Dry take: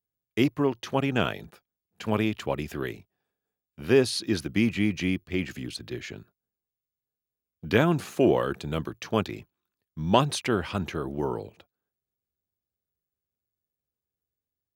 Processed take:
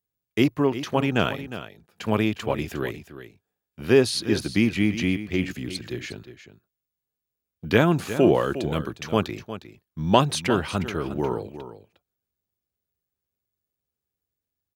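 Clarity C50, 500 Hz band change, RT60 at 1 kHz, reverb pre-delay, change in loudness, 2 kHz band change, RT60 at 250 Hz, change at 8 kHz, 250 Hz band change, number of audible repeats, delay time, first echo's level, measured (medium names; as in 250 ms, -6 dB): no reverb, +3.0 dB, no reverb, no reverb, +3.0 dB, +3.0 dB, no reverb, +3.0 dB, +3.0 dB, 1, 358 ms, -12.5 dB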